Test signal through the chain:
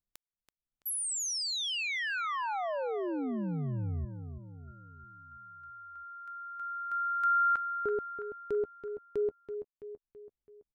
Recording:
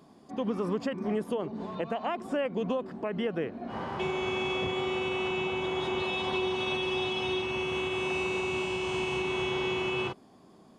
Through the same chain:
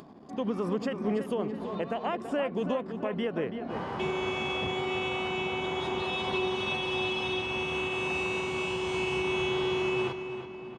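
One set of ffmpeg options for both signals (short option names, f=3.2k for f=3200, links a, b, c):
-filter_complex "[0:a]acompressor=mode=upward:threshold=-43dB:ratio=2.5,anlmdn=0.000398,asplit=2[a][b];[b]adelay=331,lowpass=f=4.2k:p=1,volume=-9dB,asplit=2[c][d];[d]adelay=331,lowpass=f=4.2k:p=1,volume=0.52,asplit=2[e][f];[f]adelay=331,lowpass=f=4.2k:p=1,volume=0.52,asplit=2[g][h];[h]adelay=331,lowpass=f=4.2k:p=1,volume=0.52,asplit=2[i][j];[j]adelay=331,lowpass=f=4.2k:p=1,volume=0.52,asplit=2[k][l];[l]adelay=331,lowpass=f=4.2k:p=1,volume=0.52[m];[a][c][e][g][i][k][m]amix=inputs=7:normalize=0"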